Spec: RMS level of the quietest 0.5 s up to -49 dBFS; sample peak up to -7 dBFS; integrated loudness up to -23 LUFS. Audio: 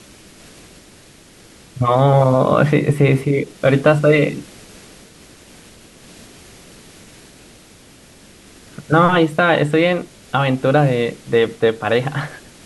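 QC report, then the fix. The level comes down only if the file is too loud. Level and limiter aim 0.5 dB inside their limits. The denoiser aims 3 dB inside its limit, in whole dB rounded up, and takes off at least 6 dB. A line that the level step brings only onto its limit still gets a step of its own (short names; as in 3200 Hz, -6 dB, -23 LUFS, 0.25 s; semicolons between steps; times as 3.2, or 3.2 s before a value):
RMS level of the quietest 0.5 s -45 dBFS: fail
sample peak -3.0 dBFS: fail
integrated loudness -16.0 LUFS: fail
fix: gain -7.5 dB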